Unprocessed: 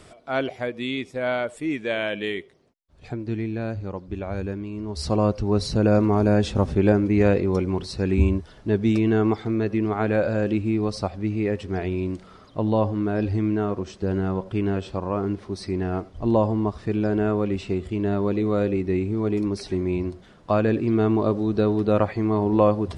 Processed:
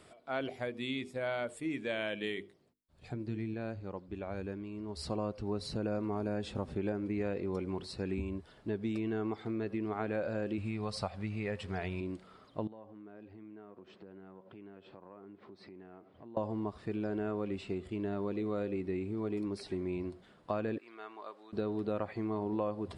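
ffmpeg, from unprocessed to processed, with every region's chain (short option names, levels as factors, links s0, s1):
-filter_complex "[0:a]asettb=1/sr,asplit=3[s0][s1][s2];[s0]atrim=end=0.414[s3];[s1]atrim=start=0.41:end=3.54,asetpts=PTS-STARTPTS,afade=t=in:d=0.004:c=qsin,afade=t=out:st=3.126:d=0.004:c=qsin,bass=f=250:g=6,treble=f=4000:g=5,bandreject=f=50:t=h:w=6,bandreject=f=100:t=h:w=6,bandreject=f=150:t=h:w=6,bandreject=f=200:t=h:w=6,bandreject=f=250:t=h:w=6,bandreject=f=300:t=h:w=6,bandreject=f=350:t=h:w=6,bandreject=f=400:t=h:w=6,bandreject=f=450:t=h:w=6[s4];[s2]atrim=start=3.536[s5];[s3][s4]acrossfade=d=0.004:c1=hsin:c2=qsin[s6];[s6][s5]acrossfade=d=0.004:c1=qsin:c2=hsin,asettb=1/sr,asplit=3[s7][s8][s9];[s7]atrim=end=10.584[s10];[s8]atrim=start=10.58:end=12.01,asetpts=PTS-STARTPTS,afade=t=in:d=0.004:c=qsin,afade=t=out:st=1.426:d=0.004:c=qsin,equalizer=f=320:t=o:w=0.96:g=-12.5,acontrast=82[s11];[s9]atrim=start=12.006[s12];[s10][s11]acrossfade=d=0.004:c1=hsin:c2=qsin[s13];[s13][s12]acrossfade=d=0.004:c1=qsin:c2=hsin,asettb=1/sr,asplit=3[s14][s15][s16];[s14]atrim=end=12.674[s17];[s15]atrim=start=12.67:end=16.37,asetpts=PTS-STARTPTS,afade=t=in:d=0.004:c=qsin,afade=t=out:st=3.696:d=0.004:c=qsin,highpass=150,lowpass=3000,acompressor=threshold=0.00891:ratio=4:attack=3.2:release=140:knee=1:detection=peak[s18];[s16]atrim=start=16.366[s19];[s17][s18]acrossfade=d=0.004:c1=hsin:c2=qsin[s20];[s20][s19]acrossfade=d=0.004:c1=qsin:c2=hsin,asettb=1/sr,asplit=3[s21][s22][s23];[s21]atrim=end=20.784[s24];[s22]atrim=start=20.78:end=21.53,asetpts=PTS-STARTPTS,afade=t=in:d=0.004:c=qsin,afade=t=out:st=0.746:d=0.004:c=qsin,highpass=1300,highshelf=f=2100:g=-8[s25];[s23]atrim=start=21.526[s26];[s24][s25]acrossfade=d=0.004:c1=hsin:c2=qsin[s27];[s27][s26]acrossfade=d=0.004:c1=qsin:c2=hsin,equalizer=f=6000:t=o:w=0.3:g=-8.5,acompressor=threshold=0.0794:ratio=4,lowshelf=f=89:g=-11.5,volume=0.376"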